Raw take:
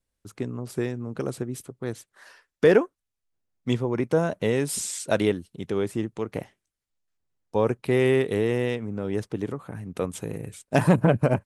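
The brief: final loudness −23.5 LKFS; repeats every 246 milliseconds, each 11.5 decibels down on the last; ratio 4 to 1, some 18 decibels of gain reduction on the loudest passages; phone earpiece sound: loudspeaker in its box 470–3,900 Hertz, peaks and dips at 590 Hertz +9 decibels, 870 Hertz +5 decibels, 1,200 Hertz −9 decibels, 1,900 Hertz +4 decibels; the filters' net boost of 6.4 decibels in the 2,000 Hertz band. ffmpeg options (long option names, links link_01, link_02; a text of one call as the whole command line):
ffmpeg -i in.wav -af "equalizer=frequency=2000:width_type=o:gain=5.5,acompressor=threshold=-35dB:ratio=4,highpass=470,equalizer=frequency=590:width_type=q:width=4:gain=9,equalizer=frequency=870:width_type=q:width=4:gain=5,equalizer=frequency=1200:width_type=q:width=4:gain=-9,equalizer=frequency=1900:width_type=q:width=4:gain=4,lowpass=frequency=3900:width=0.5412,lowpass=frequency=3900:width=1.3066,aecho=1:1:246|492|738:0.266|0.0718|0.0194,volume=16.5dB" out.wav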